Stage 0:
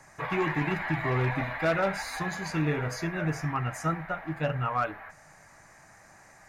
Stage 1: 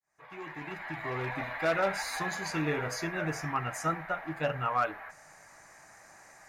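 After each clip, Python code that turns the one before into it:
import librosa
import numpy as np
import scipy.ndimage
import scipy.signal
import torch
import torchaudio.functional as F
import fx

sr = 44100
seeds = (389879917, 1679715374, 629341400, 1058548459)

y = fx.fade_in_head(x, sr, length_s=2.05)
y = fx.bass_treble(y, sr, bass_db=-8, treble_db=2)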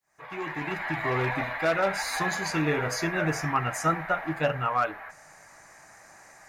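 y = fx.rider(x, sr, range_db=3, speed_s=0.5)
y = F.gain(torch.from_numpy(y), 5.5).numpy()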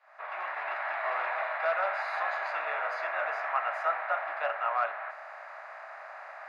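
y = fx.bin_compress(x, sr, power=0.6)
y = scipy.signal.sosfilt(scipy.signal.ellip(4, 1.0, 80, 630.0, 'highpass', fs=sr, output='sos'), y)
y = fx.air_absorb(y, sr, metres=430.0)
y = F.gain(torch.from_numpy(y), -3.0).numpy()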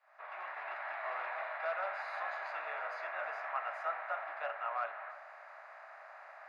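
y = x + 10.0 ** (-17.0 / 20.0) * np.pad(x, (int(318 * sr / 1000.0), 0))[:len(x)]
y = F.gain(torch.from_numpy(y), -8.0).numpy()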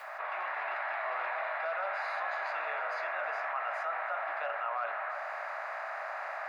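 y = fx.env_flatten(x, sr, amount_pct=70)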